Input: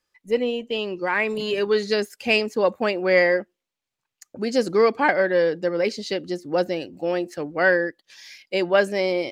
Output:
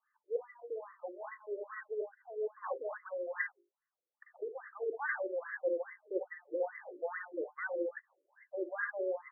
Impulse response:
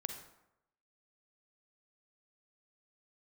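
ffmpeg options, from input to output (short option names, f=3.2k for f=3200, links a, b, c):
-filter_complex "[0:a]bandreject=f=50:t=h:w=6,bandreject=f=100:t=h:w=6,bandreject=f=150:t=h:w=6,bandreject=f=200:t=h:w=6,bandreject=f=250:t=h:w=6,bandreject=f=300:t=h:w=6,bandreject=f=350:t=h:w=6,bandreject=f=400:t=h:w=6[a];[1:a]atrim=start_sample=2205,atrim=end_sample=4410[b];[a][b]afir=irnorm=-1:irlink=0,asplit=2[c][d];[d]aeval=exprs='(mod(5.31*val(0)+1,2)-1)/5.31':c=same,volume=-9dB[e];[c][e]amix=inputs=2:normalize=0,crystalizer=i=8.5:c=0,areverse,acompressor=threshold=-23dB:ratio=10,areverse,afftfilt=real='re*between(b*sr/1024,410*pow(1500/410,0.5+0.5*sin(2*PI*2.4*pts/sr))/1.41,410*pow(1500/410,0.5+0.5*sin(2*PI*2.4*pts/sr))*1.41)':imag='im*between(b*sr/1024,410*pow(1500/410,0.5+0.5*sin(2*PI*2.4*pts/sr))/1.41,410*pow(1500/410,0.5+0.5*sin(2*PI*2.4*pts/sr))*1.41)':win_size=1024:overlap=0.75,volume=-4dB"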